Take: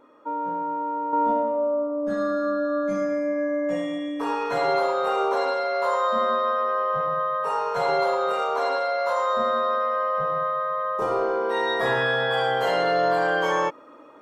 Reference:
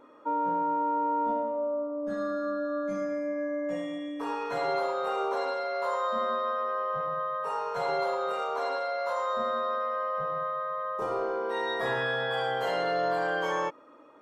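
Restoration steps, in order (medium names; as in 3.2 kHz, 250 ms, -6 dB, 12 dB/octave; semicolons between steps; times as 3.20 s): trim 0 dB, from 1.13 s -6.5 dB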